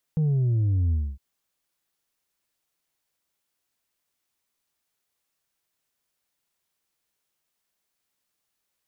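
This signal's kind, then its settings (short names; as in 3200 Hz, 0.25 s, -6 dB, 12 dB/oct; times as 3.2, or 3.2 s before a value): sub drop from 160 Hz, over 1.01 s, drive 3 dB, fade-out 0.26 s, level -20 dB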